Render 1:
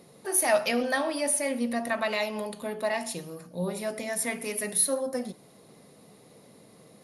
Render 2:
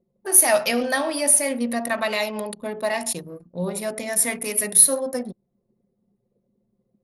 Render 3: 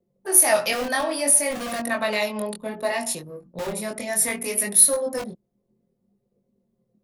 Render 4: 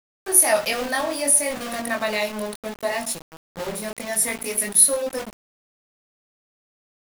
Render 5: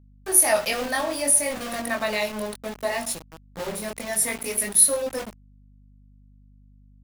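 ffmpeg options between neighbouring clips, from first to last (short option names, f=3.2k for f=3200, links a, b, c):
-af "anlmdn=0.631,highshelf=f=8k:g=11,volume=4dB"
-filter_complex "[0:a]acrossover=split=300|500|4300[a][b][c][d];[a]aeval=exprs='(mod(26.6*val(0)+1,2)-1)/26.6':c=same[e];[e][b][c][d]amix=inputs=4:normalize=0,flanger=delay=20:depth=4.1:speed=0.63,volume=2.5dB"
-af "aeval=exprs='val(0)*gte(abs(val(0)),0.0266)':c=same"
-af "aeval=exprs='val(0)+0.00316*(sin(2*PI*50*n/s)+sin(2*PI*2*50*n/s)/2+sin(2*PI*3*50*n/s)/3+sin(2*PI*4*50*n/s)/4+sin(2*PI*5*50*n/s)/5)':c=same,volume=-1.5dB"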